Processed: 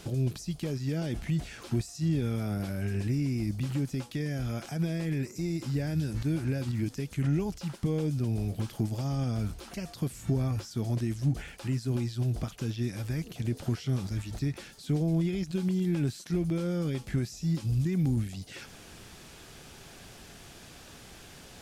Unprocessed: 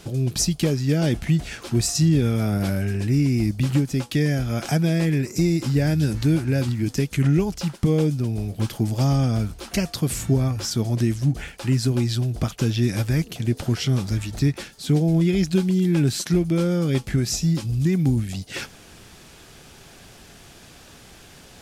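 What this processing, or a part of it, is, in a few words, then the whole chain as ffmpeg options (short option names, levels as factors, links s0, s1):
de-esser from a sidechain: -filter_complex "[0:a]asplit=2[s0][s1];[s1]highpass=f=6400:p=1,apad=whole_len=953095[s2];[s0][s2]sidechaincompress=threshold=0.00316:ratio=3:attack=2.7:release=43,volume=0.794"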